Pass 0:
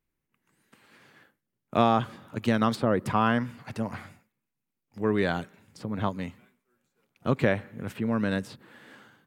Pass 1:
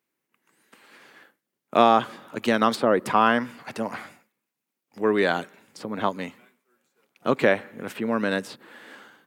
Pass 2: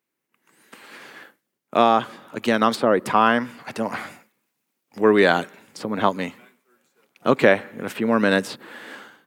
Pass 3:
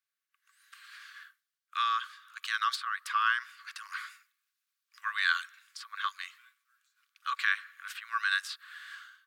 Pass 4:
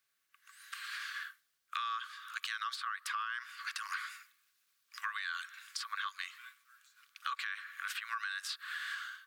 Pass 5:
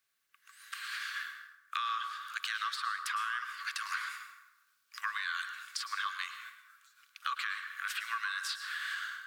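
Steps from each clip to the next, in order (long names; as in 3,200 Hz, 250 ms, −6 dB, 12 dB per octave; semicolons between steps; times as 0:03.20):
high-pass filter 290 Hz 12 dB per octave; level +6 dB
automatic gain control gain up to 10 dB; level −1 dB
Chebyshev high-pass with heavy ripple 1,100 Hz, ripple 6 dB; level −3.5 dB
brickwall limiter −24.5 dBFS, peak gain reduction 10.5 dB; downward compressor 5 to 1, threshold −46 dBFS, peak gain reduction 15 dB; level +9 dB
dense smooth reverb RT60 1.1 s, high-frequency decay 0.55×, pre-delay 95 ms, DRR 6.5 dB; in parallel at −9 dB: dead-zone distortion −56 dBFS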